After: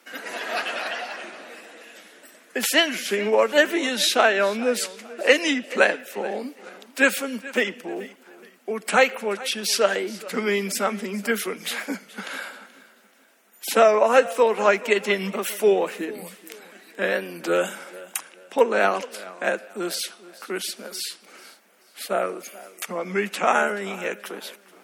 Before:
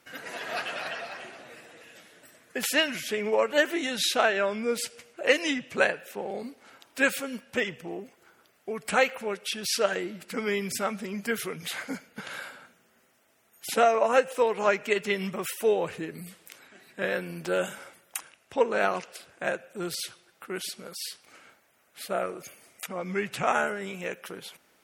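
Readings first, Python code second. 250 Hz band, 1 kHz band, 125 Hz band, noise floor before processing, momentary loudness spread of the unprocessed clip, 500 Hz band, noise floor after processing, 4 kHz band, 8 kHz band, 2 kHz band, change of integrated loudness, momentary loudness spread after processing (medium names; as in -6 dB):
+5.0 dB, +5.0 dB, no reading, -65 dBFS, 17 LU, +5.5 dB, -55 dBFS, +5.5 dB, +5.5 dB, +5.5 dB, +5.5 dB, 18 LU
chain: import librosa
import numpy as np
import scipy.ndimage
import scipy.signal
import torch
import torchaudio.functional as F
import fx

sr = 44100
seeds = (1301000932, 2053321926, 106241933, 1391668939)

y = scipy.signal.sosfilt(scipy.signal.butter(12, 190.0, 'highpass', fs=sr, output='sos'), x)
y = fx.echo_feedback(y, sr, ms=430, feedback_pct=34, wet_db=-19.0)
y = fx.record_warp(y, sr, rpm=33.33, depth_cents=100.0)
y = y * librosa.db_to_amplitude(5.5)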